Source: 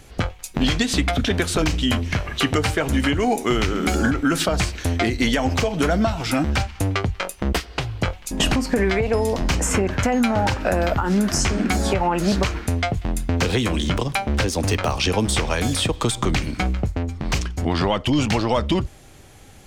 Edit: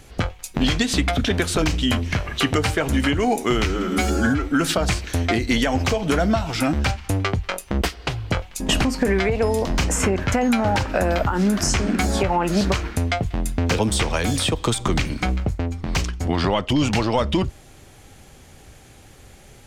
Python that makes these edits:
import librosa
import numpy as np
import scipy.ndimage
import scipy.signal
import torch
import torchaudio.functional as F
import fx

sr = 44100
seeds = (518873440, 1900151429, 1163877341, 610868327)

y = fx.edit(x, sr, fx.stretch_span(start_s=3.65, length_s=0.58, factor=1.5),
    fx.cut(start_s=13.5, length_s=1.66), tone=tone)